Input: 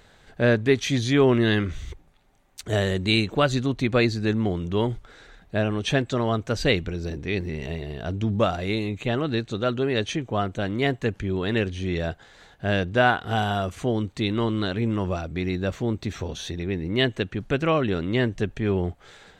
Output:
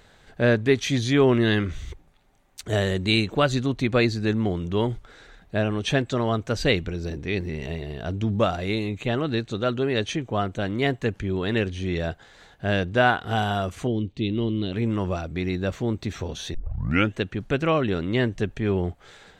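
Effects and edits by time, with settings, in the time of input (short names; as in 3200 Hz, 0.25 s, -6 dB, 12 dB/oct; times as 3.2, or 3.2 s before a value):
13.87–14.73 EQ curve 350 Hz 0 dB, 970 Hz -14 dB, 1500 Hz -18 dB, 2900 Hz -1 dB, 8600 Hz -18 dB
16.54 tape start 0.61 s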